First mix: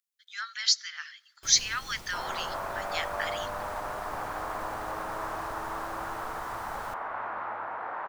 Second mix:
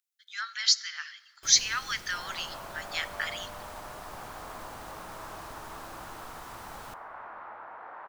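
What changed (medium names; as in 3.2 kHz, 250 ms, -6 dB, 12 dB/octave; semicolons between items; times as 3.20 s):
speech: send +9.5 dB; second sound -8.5 dB; master: add bass shelf 130 Hz -4.5 dB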